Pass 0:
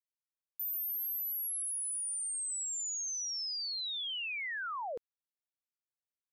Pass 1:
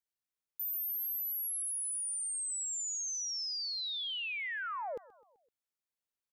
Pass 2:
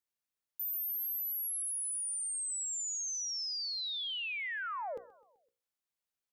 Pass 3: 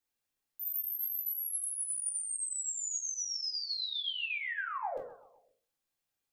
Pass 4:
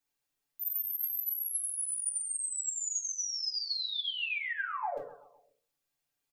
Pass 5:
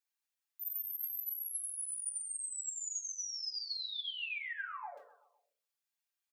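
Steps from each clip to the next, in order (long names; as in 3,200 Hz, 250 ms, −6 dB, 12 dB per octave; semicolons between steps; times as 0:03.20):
repeating echo 128 ms, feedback 54%, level −20.5 dB
mains-hum notches 60/120/180/240/300/360/420/480/540 Hz
in parallel at +2 dB: brickwall limiter −41 dBFS, peak gain reduction 9 dB; on the sum: convolution reverb RT60 0.35 s, pre-delay 3 ms, DRR −2 dB; level −6.5 dB
comb filter 6.9 ms
high-pass filter 990 Hz 12 dB per octave; level −5.5 dB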